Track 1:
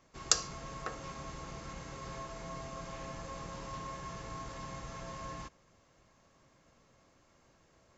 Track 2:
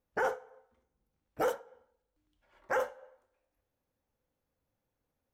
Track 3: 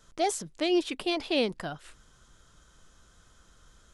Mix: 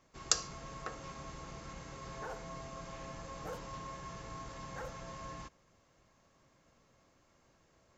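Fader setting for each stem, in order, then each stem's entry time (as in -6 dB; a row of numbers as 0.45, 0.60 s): -2.5 dB, -15.0 dB, off; 0.00 s, 2.05 s, off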